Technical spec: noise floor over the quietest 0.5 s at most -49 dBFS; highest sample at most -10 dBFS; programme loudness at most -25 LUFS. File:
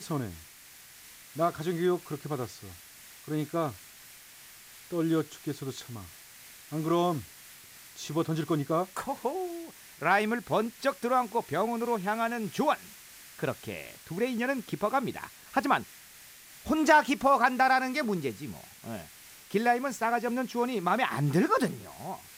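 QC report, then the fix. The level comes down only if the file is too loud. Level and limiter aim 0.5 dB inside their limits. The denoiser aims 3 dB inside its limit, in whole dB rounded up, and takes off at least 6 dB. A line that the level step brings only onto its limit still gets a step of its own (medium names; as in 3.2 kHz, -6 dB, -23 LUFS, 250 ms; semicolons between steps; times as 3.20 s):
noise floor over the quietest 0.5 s -52 dBFS: pass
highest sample -8.5 dBFS: fail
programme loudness -29.5 LUFS: pass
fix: peak limiter -10.5 dBFS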